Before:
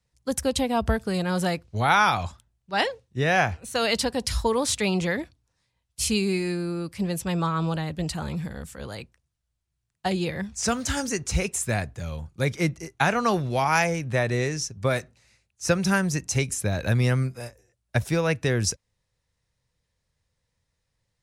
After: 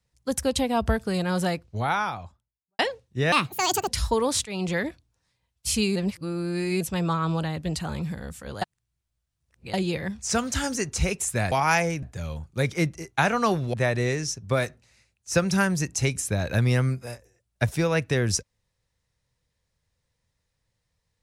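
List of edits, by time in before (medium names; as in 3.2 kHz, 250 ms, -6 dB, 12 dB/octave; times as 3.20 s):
1.31–2.79 s: studio fade out
3.32–4.21 s: speed 160%
4.79–5.18 s: fade in equal-power, from -18.5 dB
6.29–7.14 s: reverse
8.95–10.07 s: reverse
13.56–14.07 s: move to 11.85 s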